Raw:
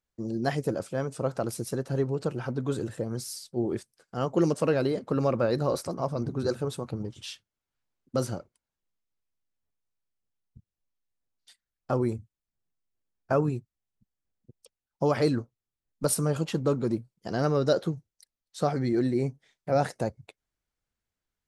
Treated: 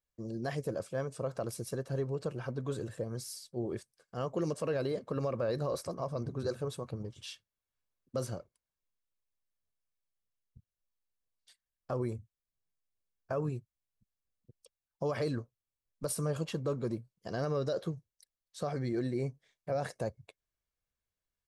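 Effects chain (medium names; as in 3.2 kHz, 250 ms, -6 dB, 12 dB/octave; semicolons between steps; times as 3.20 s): comb 1.8 ms, depth 32%; peak limiter -18.5 dBFS, peak gain reduction 8 dB; trim -6 dB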